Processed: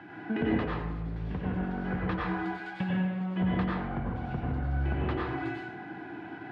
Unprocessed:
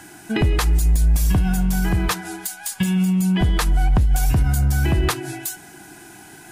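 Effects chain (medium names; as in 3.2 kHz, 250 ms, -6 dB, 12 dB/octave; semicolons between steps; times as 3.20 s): one-sided wavefolder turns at -15.5 dBFS; compression 6:1, threshold -25 dBFS, peak gain reduction 11 dB; band-pass 120–3500 Hz; distance through air 390 m; plate-style reverb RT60 0.9 s, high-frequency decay 0.6×, pre-delay 80 ms, DRR -4 dB; trim -2.5 dB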